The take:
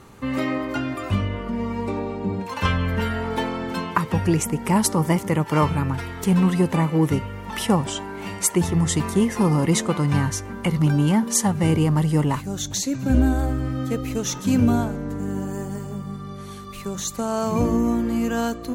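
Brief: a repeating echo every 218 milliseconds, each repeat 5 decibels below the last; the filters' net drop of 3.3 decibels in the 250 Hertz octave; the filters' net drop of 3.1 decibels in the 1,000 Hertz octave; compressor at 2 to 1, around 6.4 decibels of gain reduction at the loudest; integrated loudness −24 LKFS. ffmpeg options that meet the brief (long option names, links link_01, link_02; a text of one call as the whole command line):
ffmpeg -i in.wav -af "equalizer=frequency=250:width_type=o:gain=-4.5,equalizer=frequency=1000:width_type=o:gain=-3.5,acompressor=threshold=-28dB:ratio=2,aecho=1:1:218|436|654|872|1090|1308|1526:0.562|0.315|0.176|0.0988|0.0553|0.031|0.0173,volume=4dB" out.wav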